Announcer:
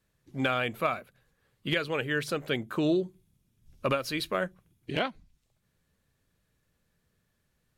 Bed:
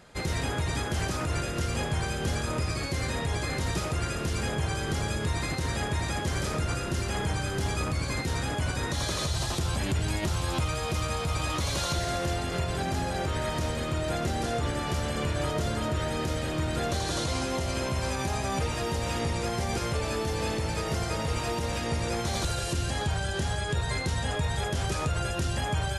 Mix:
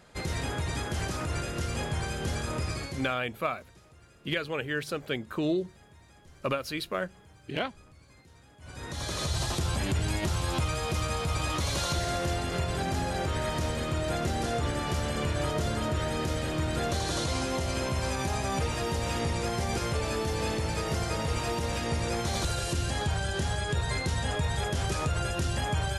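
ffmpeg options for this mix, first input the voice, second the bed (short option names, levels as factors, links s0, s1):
-filter_complex "[0:a]adelay=2600,volume=0.794[s0];[1:a]volume=15,afade=t=out:st=2.73:d=0.43:silence=0.0630957,afade=t=in:st=8.59:d=0.75:silence=0.0501187[s1];[s0][s1]amix=inputs=2:normalize=0"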